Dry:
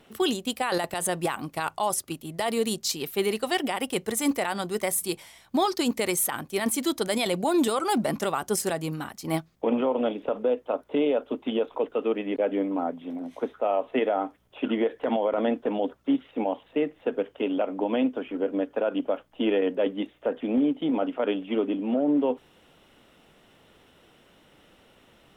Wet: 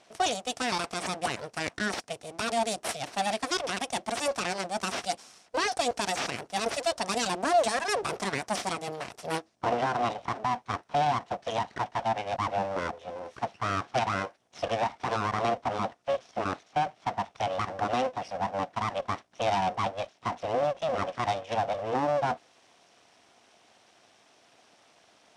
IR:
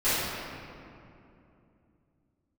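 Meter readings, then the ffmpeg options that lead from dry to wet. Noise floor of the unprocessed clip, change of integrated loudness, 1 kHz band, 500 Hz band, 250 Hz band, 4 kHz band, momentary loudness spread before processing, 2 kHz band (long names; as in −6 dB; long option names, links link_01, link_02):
−59 dBFS, −3.0 dB, +3.5 dB, −5.0 dB, −11.5 dB, −0.5 dB, 6 LU, +1.5 dB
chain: -af "aeval=exprs='abs(val(0))':channel_layout=same,highpass=140,equalizer=frequency=160:width_type=q:width=4:gain=-5,equalizer=frequency=700:width_type=q:width=4:gain=8,equalizer=frequency=5600:width_type=q:width=4:gain=7,equalizer=frequency=8800:width_type=q:width=4:gain=3,lowpass=frequency=9500:width=0.5412,lowpass=frequency=9500:width=1.3066"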